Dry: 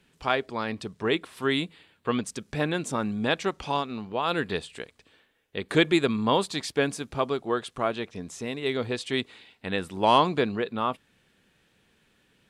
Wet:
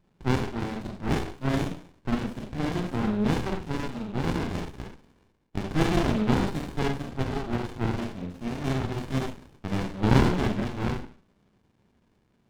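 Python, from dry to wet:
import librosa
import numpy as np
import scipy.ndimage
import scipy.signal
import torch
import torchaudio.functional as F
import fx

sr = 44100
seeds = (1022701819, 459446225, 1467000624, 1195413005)

y = fx.high_shelf_res(x, sr, hz=5200.0, db=-11.5, q=1.5)
y = fx.rev_schroeder(y, sr, rt60_s=0.45, comb_ms=30, drr_db=-3.5)
y = fx.running_max(y, sr, window=65)
y = y * 10.0 ** (-2.5 / 20.0)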